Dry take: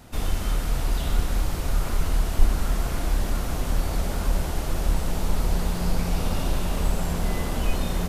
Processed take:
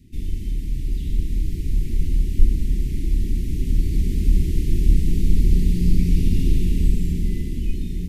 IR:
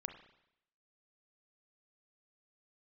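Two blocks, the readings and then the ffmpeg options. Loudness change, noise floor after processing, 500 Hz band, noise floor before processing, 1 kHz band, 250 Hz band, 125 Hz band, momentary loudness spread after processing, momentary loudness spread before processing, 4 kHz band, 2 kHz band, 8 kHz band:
+4.0 dB, −28 dBFS, −5.5 dB, −29 dBFS, below −40 dB, +5.0 dB, +5.0 dB, 8 LU, 2 LU, −7.0 dB, −10.0 dB, −7.5 dB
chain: -af "dynaudnorm=framelen=290:gausssize=9:maxgain=11.5dB,asuperstop=centerf=870:order=12:qfactor=0.54,tiltshelf=frequency=970:gain=6.5,volume=-6.5dB"

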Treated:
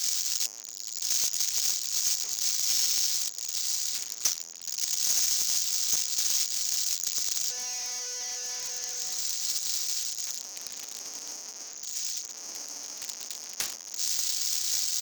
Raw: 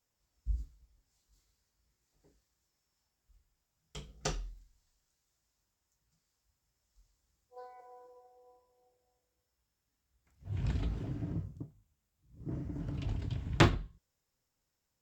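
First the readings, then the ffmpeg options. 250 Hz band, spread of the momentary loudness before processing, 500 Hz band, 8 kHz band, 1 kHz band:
below −15 dB, 25 LU, −8.0 dB, +30.0 dB, −4.5 dB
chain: -filter_complex "[0:a]aeval=exprs='val(0)+0.5*0.0631*sgn(val(0))':channel_layout=same,acrossover=split=410|1000[link_01][link_02][link_03];[link_03]aexciter=amount=6.8:drive=4.5:freq=5200[link_04];[link_01][link_02][link_04]amix=inputs=3:normalize=0,aderivative,areverse,acompressor=mode=upward:threshold=-15dB:ratio=2.5,areverse,afftfilt=real='re*between(b*sr/4096,190,6800)':imag='im*between(b*sr/4096,190,6800)':win_size=4096:overlap=0.75,volume=15.5dB,asoftclip=hard,volume=-15.5dB,aeval=exprs='0.168*(cos(1*acos(clip(val(0)/0.168,-1,1)))-cos(1*PI/2))+0.00168*(cos(3*acos(clip(val(0)/0.168,-1,1)))-cos(3*PI/2))+0.0668*(cos(7*acos(clip(val(0)/0.168,-1,1)))-cos(7*PI/2))':channel_layout=same,asplit=2[link_05][link_06];[link_06]adelay=1135,lowpass=frequency=1400:poles=1,volume=-12dB,asplit=2[link_07][link_08];[link_08]adelay=1135,lowpass=frequency=1400:poles=1,volume=0.45,asplit=2[link_09][link_10];[link_10]adelay=1135,lowpass=frequency=1400:poles=1,volume=0.45,asplit=2[link_11][link_12];[link_12]adelay=1135,lowpass=frequency=1400:poles=1,volume=0.45,asplit=2[link_13][link_14];[link_14]adelay=1135,lowpass=frequency=1400:poles=1,volume=0.45[link_15];[link_05][link_07][link_09][link_11][link_13][link_15]amix=inputs=6:normalize=0,adynamicequalizer=threshold=0.00708:dfrequency=1600:dqfactor=0.7:tfrequency=1600:tqfactor=0.7:attack=5:release=100:ratio=0.375:range=1.5:mode=boostabove:tftype=highshelf,volume=-4dB"

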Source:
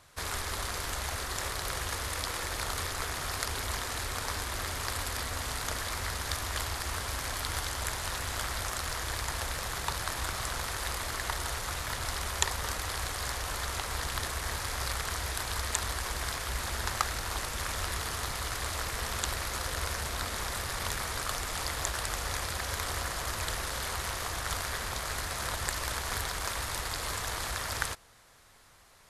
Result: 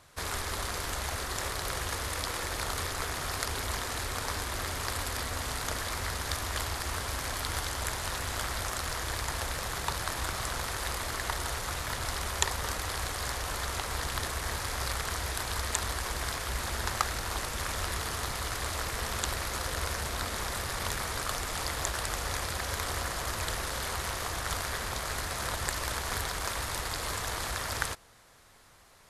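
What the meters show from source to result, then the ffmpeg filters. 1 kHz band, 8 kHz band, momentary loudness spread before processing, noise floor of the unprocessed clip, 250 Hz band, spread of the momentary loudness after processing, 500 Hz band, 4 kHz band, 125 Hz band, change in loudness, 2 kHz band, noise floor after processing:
+1.0 dB, 0.0 dB, 2 LU, −37 dBFS, +2.5 dB, 2 LU, +2.0 dB, 0.0 dB, +1.0 dB, +0.5 dB, +0.5 dB, −37 dBFS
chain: -af "equalizer=frequency=290:width=0.41:gain=2.5"

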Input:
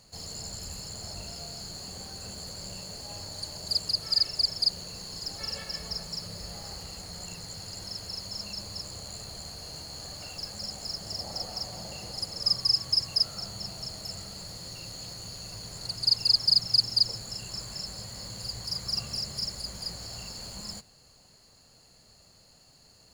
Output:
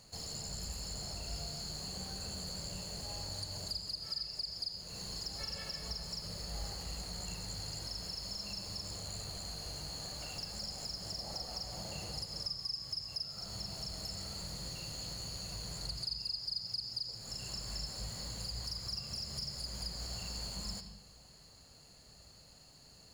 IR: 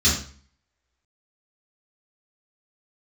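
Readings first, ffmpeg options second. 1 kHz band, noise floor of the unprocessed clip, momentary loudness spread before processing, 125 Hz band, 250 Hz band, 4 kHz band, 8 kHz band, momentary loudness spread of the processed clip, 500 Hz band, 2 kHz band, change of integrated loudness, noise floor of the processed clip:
−4.5 dB, −58 dBFS, 16 LU, −2.5 dB, −3.5 dB, −10.5 dB, −4.5 dB, 5 LU, −4.5 dB, −4.5 dB, −9.5 dB, −59 dBFS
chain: -filter_complex "[0:a]acompressor=threshold=-38dB:ratio=4,asplit=2[link_01][link_02];[1:a]atrim=start_sample=2205,asetrate=31311,aresample=44100,adelay=64[link_03];[link_02][link_03]afir=irnorm=-1:irlink=0,volume=-29dB[link_04];[link_01][link_04]amix=inputs=2:normalize=0,volume=-1.5dB"

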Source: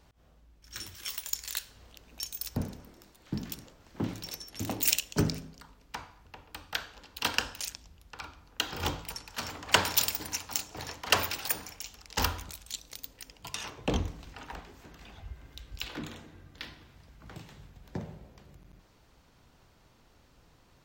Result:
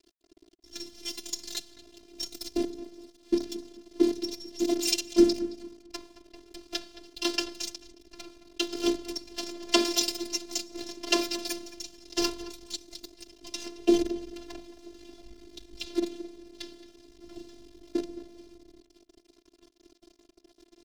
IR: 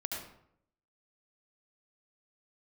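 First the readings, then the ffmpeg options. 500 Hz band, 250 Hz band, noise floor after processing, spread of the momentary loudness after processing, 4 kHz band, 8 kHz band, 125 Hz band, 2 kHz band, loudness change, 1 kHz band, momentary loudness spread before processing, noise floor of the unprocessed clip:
+10.0 dB, +10.5 dB, −66 dBFS, 22 LU, +2.0 dB, 0.0 dB, below −15 dB, −4.0 dB, +2.5 dB, −4.0 dB, 22 LU, −62 dBFS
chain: -filter_complex "[0:a]acontrast=60,aecho=1:1:6.2:0.73,acrusher=bits=5:dc=4:mix=0:aa=0.000001,highshelf=frequency=4700:gain=10,asplit=2[link_01][link_02];[link_02]adelay=220,lowpass=frequency=2400:poles=1,volume=-13.5dB,asplit=2[link_03][link_04];[link_04]adelay=220,lowpass=frequency=2400:poles=1,volume=0.27,asplit=2[link_05][link_06];[link_06]adelay=220,lowpass=frequency=2400:poles=1,volume=0.27[link_07];[link_03][link_05][link_07]amix=inputs=3:normalize=0[link_08];[link_01][link_08]amix=inputs=2:normalize=0,afftfilt=real='hypot(re,im)*cos(PI*b)':imag='0':win_size=512:overlap=0.75,firequalizer=gain_entry='entry(110,0);entry(200,12);entry(370,14);entry(850,-4);entry(1400,-7);entry(3500,0);entry(5000,2);entry(7500,-8);entry(15000,-21)':delay=0.05:min_phase=1,volume=-6.5dB"

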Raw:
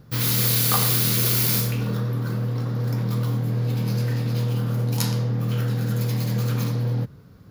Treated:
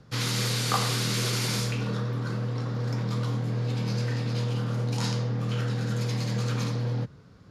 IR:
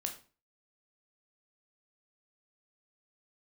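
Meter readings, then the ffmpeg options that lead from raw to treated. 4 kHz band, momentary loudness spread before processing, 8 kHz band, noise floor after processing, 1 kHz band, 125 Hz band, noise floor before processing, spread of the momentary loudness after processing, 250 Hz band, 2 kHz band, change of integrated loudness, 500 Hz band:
−2.5 dB, 8 LU, −7.0 dB, −52 dBFS, −1.0 dB, −5.0 dB, −46 dBFS, 5 LU, −4.0 dB, −1.0 dB, −6.0 dB, −2.0 dB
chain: -filter_complex "[0:a]lowpass=frequency=8400:width=0.5412,lowpass=frequency=8400:width=1.3066,lowshelf=frequency=390:gain=-5.5,acrossover=split=200|2000[link_01][link_02][link_03];[link_03]alimiter=limit=-23dB:level=0:latency=1:release=35[link_04];[link_01][link_02][link_04]amix=inputs=3:normalize=0"

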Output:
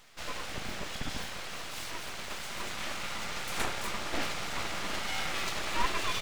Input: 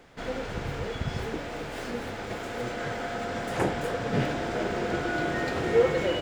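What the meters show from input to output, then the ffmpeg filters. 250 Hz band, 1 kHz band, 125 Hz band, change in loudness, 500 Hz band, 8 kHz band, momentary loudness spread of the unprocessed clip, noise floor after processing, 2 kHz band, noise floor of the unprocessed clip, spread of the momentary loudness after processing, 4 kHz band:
−12.0 dB, −3.5 dB, −12.5 dB, −5.5 dB, −15.5 dB, +6.5 dB, 10 LU, −40 dBFS, −2.5 dB, −37 dBFS, 7 LU, +3.5 dB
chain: -af "afftfilt=real='re*(1-between(b*sr/4096,210,470))':imag='im*(1-between(b*sr/4096,210,470))':win_size=4096:overlap=0.75,aeval=exprs='abs(val(0))':channel_layout=same,highshelf=frequency=2300:gain=9.5,volume=-3.5dB"

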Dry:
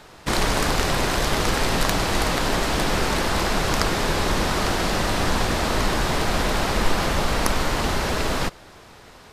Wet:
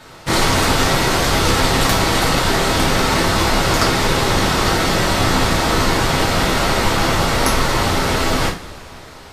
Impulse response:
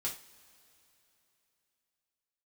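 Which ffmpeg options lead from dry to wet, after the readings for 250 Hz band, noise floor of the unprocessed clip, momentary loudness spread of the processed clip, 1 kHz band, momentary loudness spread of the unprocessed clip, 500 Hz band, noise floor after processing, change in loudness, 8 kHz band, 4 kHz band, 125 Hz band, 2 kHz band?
+6.5 dB, −46 dBFS, 2 LU, +6.5 dB, 2 LU, +6.0 dB, −38 dBFS, +6.5 dB, +7.0 dB, +7.0 dB, +7.0 dB, +6.5 dB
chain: -filter_complex "[1:a]atrim=start_sample=2205,asetrate=42336,aresample=44100[link_01];[0:a][link_01]afir=irnorm=-1:irlink=0,volume=5dB"

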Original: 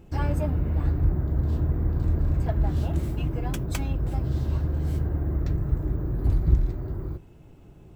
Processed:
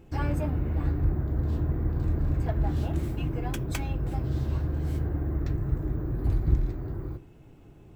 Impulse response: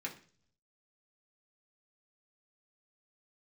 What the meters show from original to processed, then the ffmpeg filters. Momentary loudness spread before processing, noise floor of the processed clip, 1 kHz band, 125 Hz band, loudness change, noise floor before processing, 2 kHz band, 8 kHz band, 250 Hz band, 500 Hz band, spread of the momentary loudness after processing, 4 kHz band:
5 LU, −51 dBFS, −1.0 dB, −2.5 dB, −2.5 dB, −49 dBFS, 0.0 dB, −2.0 dB, −1.0 dB, −1.5 dB, 4 LU, −1.0 dB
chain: -filter_complex "[0:a]asplit=2[link_01][link_02];[1:a]atrim=start_sample=2205,lowpass=4300[link_03];[link_02][link_03]afir=irnorm=-1:irlink=0,volume=-8.5dB[link_04];[link_01][link_04]amix=inputs=2:normalize=0,volume=-2dB"

